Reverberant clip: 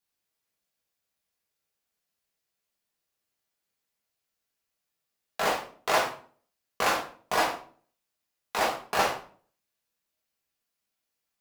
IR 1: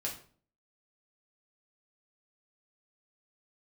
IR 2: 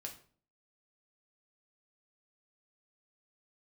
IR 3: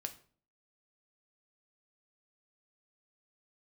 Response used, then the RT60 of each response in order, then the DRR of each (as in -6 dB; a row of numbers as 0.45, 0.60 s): 1; 0.45, 0.45, 0.45 s; -3.0, 1.0, 6.0 dB